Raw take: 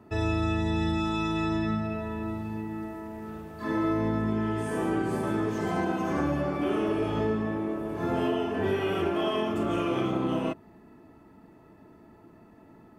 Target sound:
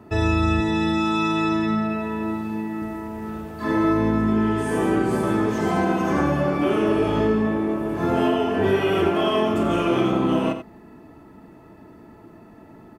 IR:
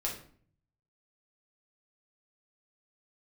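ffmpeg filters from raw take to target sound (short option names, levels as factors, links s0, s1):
-filter_complex "[0:a]asettb=1/sr,asplit=3[s0][s1][s2];[s0]atrim=end=0.604[s3];[s1]atrim=start=0.6:end=2.82,asetpts=PTS-STARTPTS,afade=t=in:d=0.004:c=qsin,afade=t=out:st=2.216:d=0.004:c=qsin,highpass=150[s4];[s2]atrim=start=2.816[s5];[s3][s4]acrossfade=d=0.004:c1=hsin:c2=qsin[s6];[s6][s5]acrossfade=d=0.004:c1=qsin:c2=hsin,aecho=1:1:88:0.316,volume=2.24"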